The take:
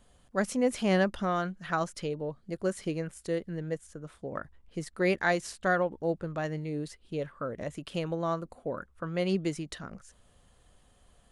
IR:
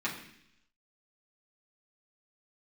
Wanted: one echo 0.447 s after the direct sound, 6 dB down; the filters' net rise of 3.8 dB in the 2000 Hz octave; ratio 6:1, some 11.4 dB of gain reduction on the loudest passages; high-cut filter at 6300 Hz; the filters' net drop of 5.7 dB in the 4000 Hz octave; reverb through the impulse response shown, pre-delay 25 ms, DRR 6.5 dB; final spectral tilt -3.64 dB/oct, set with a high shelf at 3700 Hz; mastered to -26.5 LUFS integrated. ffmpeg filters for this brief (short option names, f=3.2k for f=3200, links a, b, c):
-filter_complex "[0:a]lowpass=6.3k,equalizer=f=2k:t=o:g=8,highshelf=f=3.7k:g=-7,equalizer=f=4k:t=o:g=-7.5,acompressor=threshold=-32dB:ratio=6,aecho=1:1:447:0.501,asplit=2[a][b];[1:a]atrim=start_sample=2205,adelay=25[c];[b][c]afir=irnorm=-1:irlink=0,volume=-13dB[d];[a][d]amix=inputs=2:normalize=0,volume=10dB"